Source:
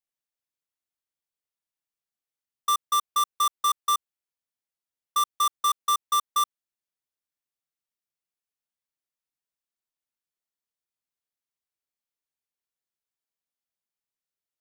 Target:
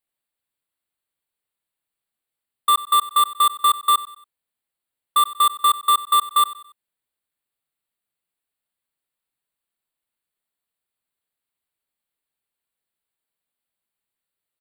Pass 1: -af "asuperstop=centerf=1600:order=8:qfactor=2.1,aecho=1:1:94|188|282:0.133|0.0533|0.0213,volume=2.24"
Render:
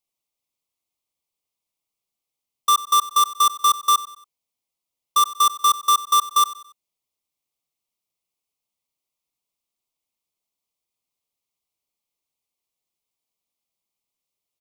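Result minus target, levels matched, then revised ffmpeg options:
8 kHz band +4.5 dB
-af "asuperstop=centerf=5900:order=8:qfactor=2.1,aecho=1:1:94|188|282:0.133|0.0533|0.0213,volume=2.24"

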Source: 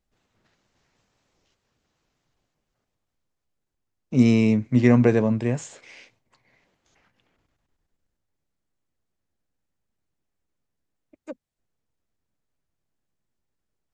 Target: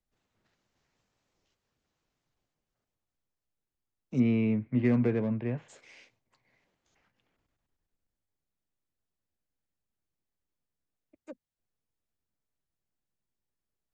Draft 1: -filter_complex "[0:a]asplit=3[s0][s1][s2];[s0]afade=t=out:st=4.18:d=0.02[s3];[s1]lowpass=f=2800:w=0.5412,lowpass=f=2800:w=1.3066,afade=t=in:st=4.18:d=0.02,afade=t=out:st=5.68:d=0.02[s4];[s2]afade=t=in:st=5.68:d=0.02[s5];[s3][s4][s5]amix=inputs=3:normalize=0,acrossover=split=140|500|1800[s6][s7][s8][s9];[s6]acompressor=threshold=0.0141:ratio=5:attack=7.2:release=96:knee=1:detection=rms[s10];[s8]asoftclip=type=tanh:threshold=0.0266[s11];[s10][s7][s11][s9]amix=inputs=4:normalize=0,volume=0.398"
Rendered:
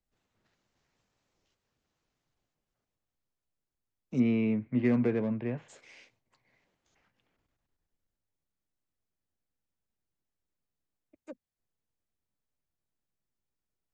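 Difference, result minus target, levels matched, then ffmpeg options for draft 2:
compression: peak gain reduction +9.5 dB
-filter_complex "[0:a]asplit=3[s0][s1][s2];[s0]afade=t=out:st=4.18:d=0.02[s3];[s1]lowpass=f=2800:w=0.5412,lowpass=f=2800:w=1.3066,afade=t=in:st=4.18:d=0.02,afade=t=out:st=5.68:d=0.02[s4];[s2]afade=t=in:st=5.68:d=0.02[s5];[s3][s4][s5]amix=inputs=3:normalize=0,acrossover=split=140|500|1800[s6][s7][s8][s9];[s6]acompressor=threshold=0.0562:ratio=5:attack=7.2:release=96:knee=1:detection=rms[s10];[s8]asoftclip=type=tanh:threshold=0.0266[s11];[s10][s7][s11][s9]amix=inputs=4:normalize=0,volume=0.398"

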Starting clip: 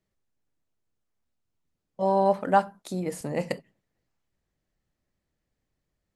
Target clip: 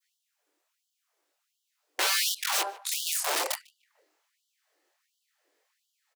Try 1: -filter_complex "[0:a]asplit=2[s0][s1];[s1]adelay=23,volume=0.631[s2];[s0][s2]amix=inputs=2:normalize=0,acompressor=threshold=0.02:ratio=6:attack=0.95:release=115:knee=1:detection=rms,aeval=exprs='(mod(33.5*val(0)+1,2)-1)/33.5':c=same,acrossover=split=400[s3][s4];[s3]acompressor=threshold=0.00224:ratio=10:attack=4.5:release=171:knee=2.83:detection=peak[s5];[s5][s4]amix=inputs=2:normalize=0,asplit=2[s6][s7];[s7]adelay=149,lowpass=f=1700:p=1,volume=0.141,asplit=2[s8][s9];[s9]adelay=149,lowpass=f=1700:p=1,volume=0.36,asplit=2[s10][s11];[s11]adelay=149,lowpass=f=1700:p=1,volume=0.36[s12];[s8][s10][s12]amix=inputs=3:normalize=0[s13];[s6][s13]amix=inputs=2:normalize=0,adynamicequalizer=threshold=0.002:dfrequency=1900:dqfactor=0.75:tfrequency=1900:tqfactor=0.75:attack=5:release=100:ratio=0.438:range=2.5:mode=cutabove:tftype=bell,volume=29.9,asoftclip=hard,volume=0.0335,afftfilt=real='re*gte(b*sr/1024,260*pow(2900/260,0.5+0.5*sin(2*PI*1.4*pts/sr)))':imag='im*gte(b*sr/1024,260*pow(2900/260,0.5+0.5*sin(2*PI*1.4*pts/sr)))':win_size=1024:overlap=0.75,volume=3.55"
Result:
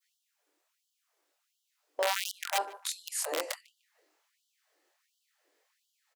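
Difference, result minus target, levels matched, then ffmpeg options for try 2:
compression: peak gain reduction +9.5 dB
-filter_complex "[0:a]asplit=2[s0][s1];[s1]adelay=23,volume=0.631[s2];[s0][s2]amix=inputs=2:normalize=0,acompressor=threshold=0.075:ratio=6:attack=0.95:release=115:knee=1:detection=rms,aeval=exprs='(mod(33.5*val(0)+1,2)-1)/33.5':c=same,acrossover=split=400[s3][s4];[s3]acompressor=threshold=0.00224:ratio=10:attack=4.5:release=171:knee=2.83:detection=peak[s5];[s5][s4]amix=inputs=2:normalize=0,asplit=2[s6][s7];[s7]adelay=149,lowpass=f=1700:p=1,volume=0.141,asplit=2[s8][s9];[s9]adelay=149,lowpass=f=1700:p=1,volume=0.36,asplit=2[s10][s11];[s11]adelay=149,lowpass=f=1700:p=1,volume=0.36[s12];[s8][s10][s12]amix=inputs=3:normalize=0[s13];[s6][s13]amix=inputs=2:normalize=0,adynamicequalizer=threshold=0.002:dfrequency=1900:dqfactor=0.75:tfrequency=1900:tqfactor=0.75:attack=5:release=100:ratio=0.438:range=2.5:mode=cutabove:tftype=bell,volume=29.9,asoftclip=hard,volume=0.0335,afftfilt=real='re*gte(b*sr/1024,260*pow(2900/260,0.5+0.5*sin(2*PI*1.4*pts/sr)))':imag='im*gte(b*sr/1024,260*pow(2900/260,0.5+0.5*sin(2*PI*1.4*pts/sr)))':win_size=1024:overlap=0.75,volume=3.55"

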